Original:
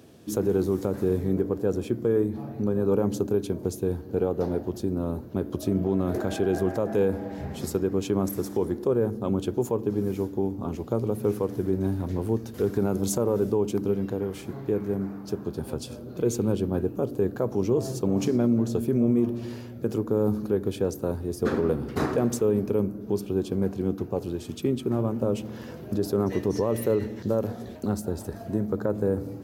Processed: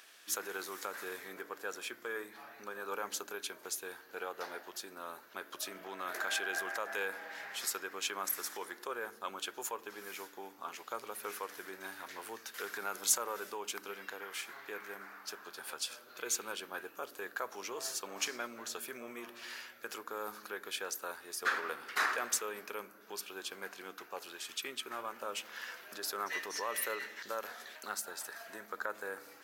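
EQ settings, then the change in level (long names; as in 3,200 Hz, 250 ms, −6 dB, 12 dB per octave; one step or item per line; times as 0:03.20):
high-pass with resonance 1,600 Hz, resonance Q 1.7
+2.5 dB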